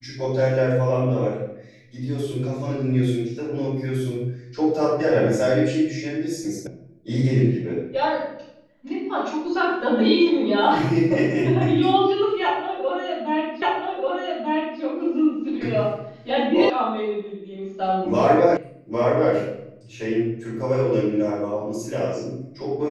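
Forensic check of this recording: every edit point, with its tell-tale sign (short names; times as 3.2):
6.67 sound cut off
13.62 repeat of the last 1.19 s
16.7 sound cut off
18.57 sound cut off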